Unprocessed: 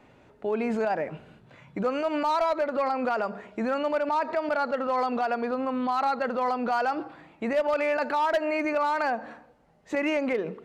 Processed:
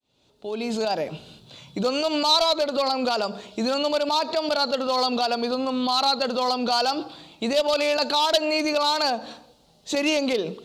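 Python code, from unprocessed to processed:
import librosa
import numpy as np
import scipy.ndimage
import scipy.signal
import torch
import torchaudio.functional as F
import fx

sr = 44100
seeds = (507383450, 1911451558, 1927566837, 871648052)

y = fx.fade_in_head(x, sr, length_s=1.02)
y = fx.high_shelf_res(y, sr, hz=2700.0, db=12.5, q=3.0)
y = F.gain(torch.from_numpy(y), 3.5).numpy()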